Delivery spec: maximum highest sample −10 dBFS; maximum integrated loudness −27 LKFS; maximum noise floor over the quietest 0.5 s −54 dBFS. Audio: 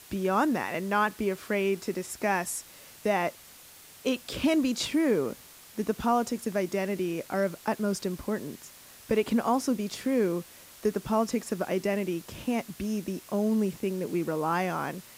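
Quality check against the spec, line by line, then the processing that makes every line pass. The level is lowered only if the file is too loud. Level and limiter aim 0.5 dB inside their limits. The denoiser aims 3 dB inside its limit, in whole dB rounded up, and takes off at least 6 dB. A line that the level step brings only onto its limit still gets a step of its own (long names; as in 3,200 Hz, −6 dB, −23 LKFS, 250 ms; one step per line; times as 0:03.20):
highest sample −14.0 dBFS: in spec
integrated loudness −29.5 LKFS: in spec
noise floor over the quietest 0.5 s −51 dBFS: out of spec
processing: broadband denoise 6 dB, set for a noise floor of −51 dBFS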